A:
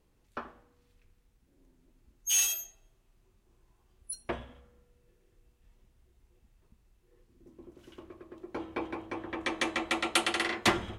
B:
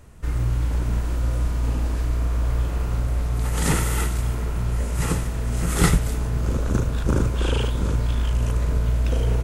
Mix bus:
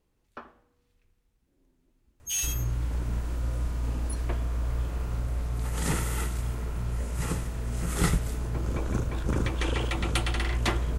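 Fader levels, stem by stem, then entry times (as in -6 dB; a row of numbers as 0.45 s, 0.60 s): -3.5 dB, -7.0 dB; 0.00 s, 2.20 s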